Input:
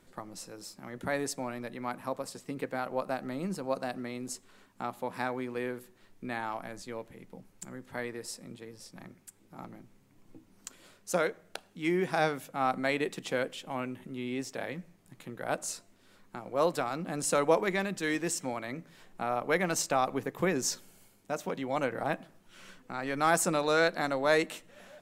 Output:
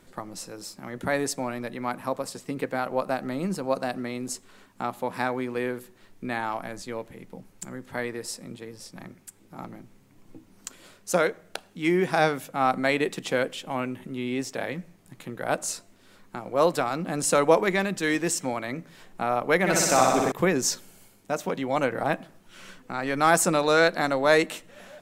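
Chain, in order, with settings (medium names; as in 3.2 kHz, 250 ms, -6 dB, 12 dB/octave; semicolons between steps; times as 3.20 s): 19.59–20.32 s: flutter echo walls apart 10.6 m, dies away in 1.4 s; trim +6 dB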